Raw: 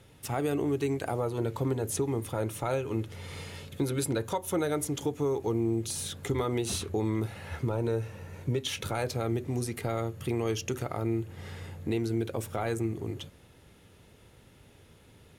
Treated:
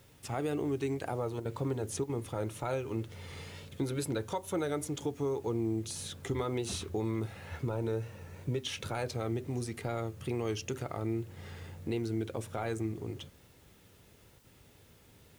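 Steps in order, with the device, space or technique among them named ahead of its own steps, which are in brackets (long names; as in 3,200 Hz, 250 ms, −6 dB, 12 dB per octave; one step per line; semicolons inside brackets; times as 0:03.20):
worn cassette (low-pass filter 9,500 Hz 12 dB per octave; tape wow and flutter; tape dropouts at 0:01.40/0:02.04/0:14.39, 52 ms −9 dB; white noise bed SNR 31 dB)
level −4 dB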